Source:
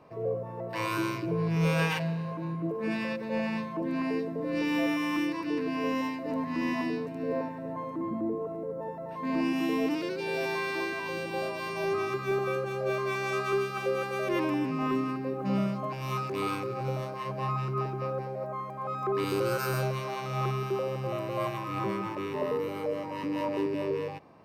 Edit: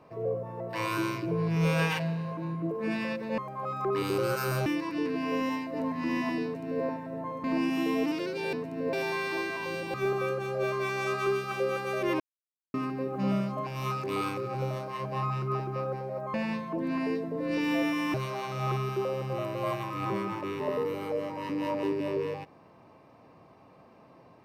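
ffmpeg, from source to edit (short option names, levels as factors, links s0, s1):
-filter_complex "[0:a]asplit=11[s0][s1][s2][s3][s4][s5][s6][s7][s8][s9][s10];[s0]atrim=end=3.382[s11];[s1]atrim=start=18.598:end=19.882[s12];[s2]atrim=start=5.178:end=7.962[s13];[s3]atrim=start=9.268:end=10.362[s14];[s4]atrim=start=6.958:end=7.362[s15];[s5]atrim=start=10.358:end=11.372[s16];[s6]atrim=start=12.198:end=14.46,asetpts=PTS-STARTPTS,afade=t=out:st=2.258:d=0.004:c=hsin[s17];[s7]atrim=start=14.46:end=15,asetpts=PTS-STARTPTS,volume=0[s18];[s8]atrim=start=15:end=18.602,asetpts=PTS-STARTPTS,afade=t=in:d=0.004:c=hsin[s19];[s9]atrim=start=3.378:end=5.182[s20];[s10]atrim=start=19.878[s21];[s11][s12]acrossfade=d=0.004:c1=hsin:c2=hsin[s22];[s22][s13]acrossfade=d=0.004:c1=hsin:c2=hsin[s23];[s23][s14]acrossfade=d=0.004:c1=hsin:c2=hsin[s24];[s24][s15]acrossfade=d=0.004:c1=hsin:c2=hsin[s25];[s25][s16]acrossfade=d=0.004:c1=hsin:c2=hsin[s26];[s17][s18][s19]concat=n=3:v=0:a=1[s27];[s26][s27]acrossfade=d=0.004:c1=hsin:c2=hsin[s28];[s28][s20]acrossfade=d=0.004:c1=hsin:c2=hsin[s29];[s29][s21]acrossfade=d=0.004:c1=hsin:c2=hsin"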